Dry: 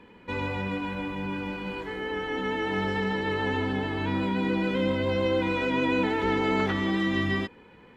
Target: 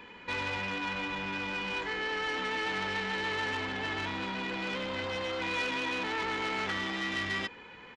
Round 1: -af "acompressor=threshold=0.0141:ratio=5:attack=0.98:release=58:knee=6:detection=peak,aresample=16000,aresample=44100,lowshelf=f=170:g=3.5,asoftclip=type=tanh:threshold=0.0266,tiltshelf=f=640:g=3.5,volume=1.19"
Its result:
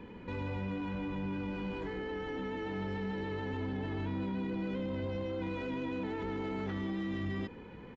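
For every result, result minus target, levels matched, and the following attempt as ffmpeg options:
compression: peak gain reduction +7 dB; 500 Hz band +4.0 dB
-af "acompressor=threshold=0.0398:ratio=5:attack=0.98:release=58:knee=6:detection=peak,aresample=16000,aresample=44100,lowshelf=f=170:g=3.5,asoftclip=type=tanh:threshold=0.0266,tiltshelf=f=640:g=3.5,volume=1.19"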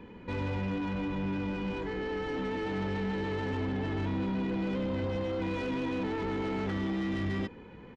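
500 Hz band +4.0 dB
-af "acompressor=threshold=0.0398:ratio=5:attack=0.98:release=58:knee=6:detection=peak,aresample=16000,aresample=44100,lowshelf=f=170:g=3.5,asoftclip=type=tanh:threshold=0.0266,tiltshelf=f=640:g=-8,volume=1.19"

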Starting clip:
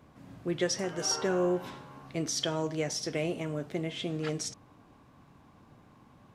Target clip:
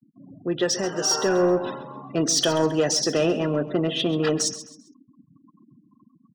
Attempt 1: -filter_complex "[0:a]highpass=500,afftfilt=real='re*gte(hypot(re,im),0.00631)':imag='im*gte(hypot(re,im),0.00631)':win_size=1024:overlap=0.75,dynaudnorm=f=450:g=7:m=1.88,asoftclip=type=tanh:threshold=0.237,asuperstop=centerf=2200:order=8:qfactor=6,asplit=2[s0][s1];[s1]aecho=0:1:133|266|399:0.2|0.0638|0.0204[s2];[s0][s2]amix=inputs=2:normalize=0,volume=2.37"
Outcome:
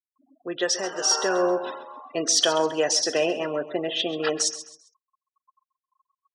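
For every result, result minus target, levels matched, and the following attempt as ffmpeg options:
saturation: distortion -13 dB; 250 Hz band -6.0 dB
-filter_complex "[0:a]highpass=500,afftfilt=real='re*gte(hypot(re,im),0.00631)':imag='im*gte(hypot(re,im),0.00631)':win_size=1024:overlap=0.75,dynaudnorm=f=450:g=7:m=1.88,asoftclip=type=tanh:threshold=0.0944,asuperstop=centerf=2200:order=8:qfactor=6,asplit=2[s0][s1];[s1]aecho=0:1:133|266|399:0.2|0.0638|0.0204[s2];[s0][s2]amix=inputs=2:normalize=0,volume=2.37"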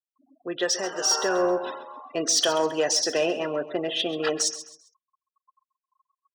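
250 Hz band -5.5 dB
-filter_complex "[0:a]highpass=180,afftfilt=real='re*gte(hypot(re,im),0.00631)':imag='im*gte(hypot(re,im),0.00631)':win_size=1024:overlap=0.75,dynaudnorm=f=450:g=7:m=1.88,asoftclip=type=tanh:threshold=0.0944,asuperstop=centerf=2200:order=8:qfactor=6,asplit=2[s0][s1];[s1]aecho=0:1:133|266|399:0.2|0.0638|0.0204[s2];[s0][s2]amix=inputs=2:normalize=0,volume=2.37"

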